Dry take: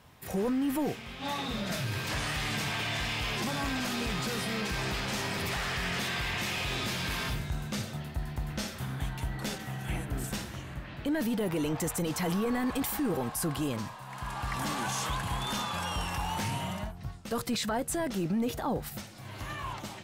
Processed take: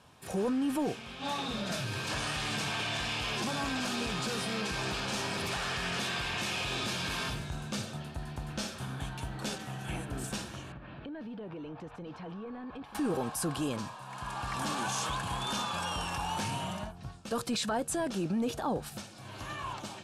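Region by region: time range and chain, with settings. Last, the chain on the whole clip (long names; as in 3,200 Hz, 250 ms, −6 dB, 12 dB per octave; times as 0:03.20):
0:10.72–0:12.95: downward compressor 10 to 1, threshold −37 dBFS + high-frequency loss of the air 330 metres
whole clip: low-pass filter 11,000 Hz 24 dB per octave; low-shelf EQ 100 Hz −9 dB; notch filter 2,000 Hz, Q 5.9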